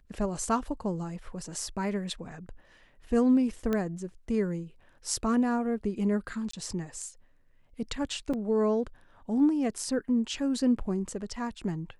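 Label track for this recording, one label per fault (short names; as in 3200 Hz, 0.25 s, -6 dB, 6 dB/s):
3.730000	3.730000	pop -17 dBFS
6.510000	6.530000	gap 24 ms
8.330000	8.340000	gap 5.6 ms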